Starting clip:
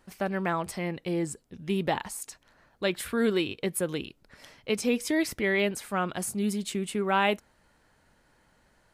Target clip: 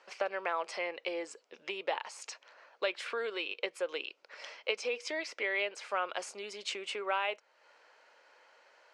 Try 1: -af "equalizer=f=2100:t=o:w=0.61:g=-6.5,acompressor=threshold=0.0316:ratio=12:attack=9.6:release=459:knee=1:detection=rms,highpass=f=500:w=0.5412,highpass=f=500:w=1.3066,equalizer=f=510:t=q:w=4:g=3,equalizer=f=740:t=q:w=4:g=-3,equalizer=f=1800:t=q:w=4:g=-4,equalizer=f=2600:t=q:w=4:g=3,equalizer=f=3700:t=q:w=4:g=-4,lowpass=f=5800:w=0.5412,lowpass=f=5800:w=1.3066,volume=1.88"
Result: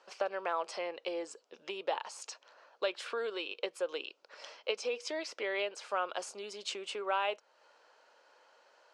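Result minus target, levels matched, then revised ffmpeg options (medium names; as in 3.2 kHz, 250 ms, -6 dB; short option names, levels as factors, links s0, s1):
2 kHz band -3.5 dB
-af "equalizer=f=2100:t=o:w=0.61:g=2,acompressor=threshold=0.0316:ratio=12:attack=9.6:release=459:knee=1:detection=rms,highpass=f=500:w=0.5412,highpass=f=500:w=1.3066,equalizer=f=510:t=q:w=4:g=3,equalizer=f=740:t=q:w=4:g=-3,equalizer=f=1800:t=q:w=4:g=-4,equalizer=f=2600:t=q:w=4:g=3,equalizer=f=3700:t=q:w=4:g=-4,lowpass=f=5800:w=0.5412,lowpass=f=5800:w=1.3066,volume=1.88"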